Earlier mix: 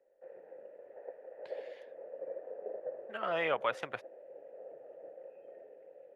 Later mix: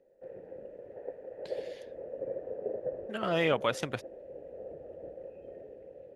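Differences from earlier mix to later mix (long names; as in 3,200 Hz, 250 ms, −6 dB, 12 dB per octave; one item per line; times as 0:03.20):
background: remove high-pass filter 180 Hz 12 dB per octave
master: remove three-way crossover with the lows and the highs turned down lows −16 dB, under 530 Hz, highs −16 dB, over 2,700 Hz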